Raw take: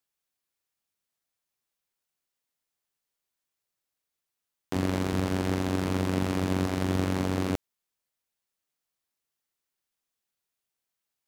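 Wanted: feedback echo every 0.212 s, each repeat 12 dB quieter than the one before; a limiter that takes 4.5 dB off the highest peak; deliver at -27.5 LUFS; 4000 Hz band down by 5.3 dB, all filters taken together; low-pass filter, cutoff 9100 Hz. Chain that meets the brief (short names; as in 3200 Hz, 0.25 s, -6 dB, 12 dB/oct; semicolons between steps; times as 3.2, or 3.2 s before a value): LPF 9100 Hz; bell 4000 Hz -7 dB; limiter -17 dBFS; feedback echo 0.212 s, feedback 25%, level -12 dB; gain +3.5 dB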